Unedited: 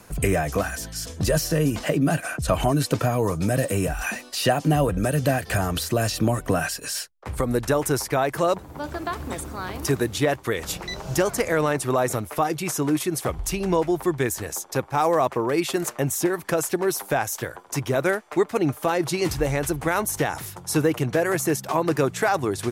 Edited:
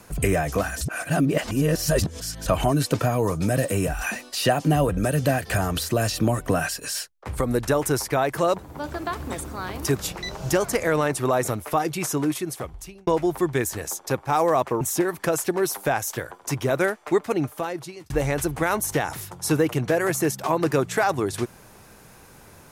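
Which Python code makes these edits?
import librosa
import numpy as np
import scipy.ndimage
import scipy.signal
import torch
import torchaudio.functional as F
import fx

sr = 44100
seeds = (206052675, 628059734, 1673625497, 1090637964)

y = fx.edit(x, sr, fx.reverse_span(start_s=0.81, length_s=1.65),
    fx.cut(start_s=9.99, length_s=0.65),
    fx.fade_out_span(start_s=12.77, length_s=0.95),
    fx.cut(start_s=15.46, length_s=0.6),
    fx.fade_out_span(start_s=18.46, length_s=0.89), tone=tone)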